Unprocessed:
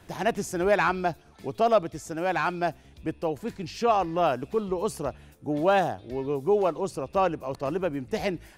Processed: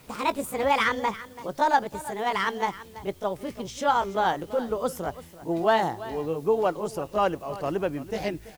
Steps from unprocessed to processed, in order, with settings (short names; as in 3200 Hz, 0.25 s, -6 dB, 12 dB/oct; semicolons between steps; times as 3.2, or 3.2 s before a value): gliding pitch shift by +6 st ending unshifted; requantised 10-bit, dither triangular; echo 0.334 s -16 dB; gain +1 dB